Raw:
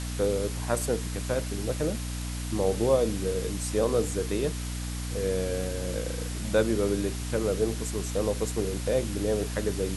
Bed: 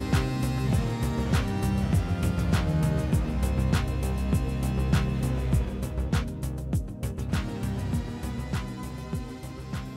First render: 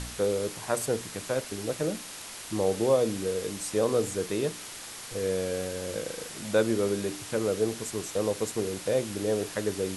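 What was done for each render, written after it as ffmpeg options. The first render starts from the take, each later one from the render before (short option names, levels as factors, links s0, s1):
-af "bandreject=f=60:t=h:w=4,bandreject=f=120:t=h:w=4,bandreject=f=180:t=h:w=4,bandreject=f=240:t=h:w=4,bandreject=f=300:t=h:w=4"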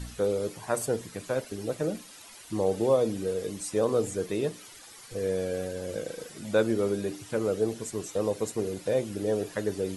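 -af "afftdn=nr=12:nf=-42"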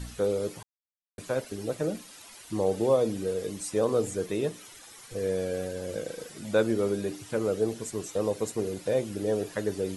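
-filter_complex "[0:a]asettb=1/sr,asplit=3[s0][s1][s2];[s0]atrim=end=4.264[s3];[s1]atrim=start=4.26:end=5.15,asetpts=PTS-STARTPTS,afade=t=in:d=0.004:c=qsin,afade=t=out:st=0.886:d=0.004:c=qsin,bandreject=f=4600:w=14[s4];[s2]atrim=start=5.146[s5];[s3][s4]acrossfade=d=0.004:c1=hsin:c2=qsin[s6];[s6][s5]acrossfade=d=0.004:c1=qsin:c2=hsin,asplit=3[s7][s8][s9];[s7]atrim=end=0.63,asetpts=PTS-STARTPTS,afade=t=out:st=0.626:d=0.004:c=hsin[s10];[s8]atrim=start=0.63:end=1.18,asetpts=PTS-STARTPTS,volume=0[s11];[s9]atrim=start=1.18,asetpts=PTS-STARTPTS,afade=t=in:d=0.004:c=hsin[s12];[s10][s11][s12]concat=n=3:v=0:a=1"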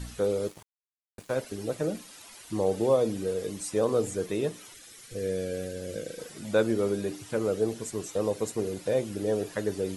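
-filter_complex "[0:a]asettb=1/sr,asplit=3[s0][s1][s2];[s0]atrim=end=0.484[s3];[s1]atrim=start=0.48:end=1.33,asetpts=PTS-STARTPTS,afade=t=in:d=0.004:c=qsin,afade=t=out:st=0.846:d=0.004:c=qsin,aeval=exprs='sgn(val(0))*max(abs(val(0))-0.00531,0)':c=same[s4];[s2]atrim=start=1.326[s5];[s3][s4]acrossfade=d=0.004:c1=hsin:c2=qsin[s6];[s6][s5]acrossfade=d=0.004:c1=qsin:c2=hsin,asettb=1/sr,asplit=3[s7][s8][s9];[s7]atrim=end=4.744[s10];[s8]atrim=start=4.74:end=6.19,asetpts=PTS-STARTPTS,afade=t=in:d=0.004:c=qsin,afade=t=out:st=1.446:d=0.004:c=qsin,equalizer=f=920:w=1.8:g=-11.5[s11];[s9]atrim=start=6.186[s12];[s10][s11]acrossfade=d=0.004:c1=hsin:c2=qsin[s13];[s13][s12]acrossfade=d=0.004:c1=qsin:c2=hsin"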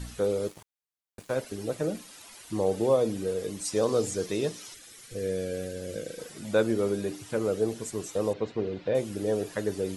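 -filter_complex "[0:a]asettb=1/sr,asplit=3[s0][s1][s2];[s0]atrim=end=3.654[s3];[s1]atrim=start=3.65:end=4.75,asetpts=PTS-STARTPTS,afade=t=in:d=0.004:c=qsin,afade=t=out:st=1.096:d=0.004:c=qsin,equalizer=f=5200:t=o:w=1.1:g=8[s4];[s2]atrim=start=4.746[s5];[s3][s4]acrossfade=d=0.004:c1=hsin:c2=qsin[s6];[s6][s5]acrossfade=d=0.004:c1=qsin:c2=hsin,asettb=1/sr,asplit=3[s7][s8][s9];[s7]atrim=end=8.334[s10];[s8]atrim=start=8.33:end=8.95,asetpts=PTS-STARTPTS,afade=t=in:d=0.004:c=qsin,afade=t=out:st=0.616:d=0.004:c=qsin,lowpass=f=3900:w=0.5412,lowpass=f=3900:w=1.3066[s11];[s9]atrim=start=8.946[s12];[s10][s11]acrossfade=d=0.004:c1=hsin:c2=qsin[s13];[s13][s12]acrossfade=d=0.004:c1=qsin:c2=hsin"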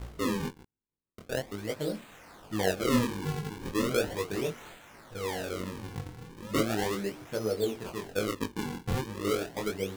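-af "acrusher=samples=40:mix=1:aa=0.000001:lfo=1:lforange=64:lforate=0.37,flanger=delay=18.5:depth=6.6:speed=1.2"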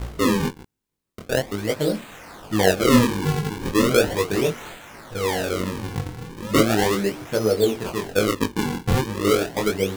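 -af "volume=3.35"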